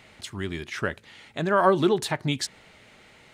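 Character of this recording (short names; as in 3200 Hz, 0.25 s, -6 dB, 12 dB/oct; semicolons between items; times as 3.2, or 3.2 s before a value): noise floor -54 dBFS; spectral tilt -5.0 dB/oct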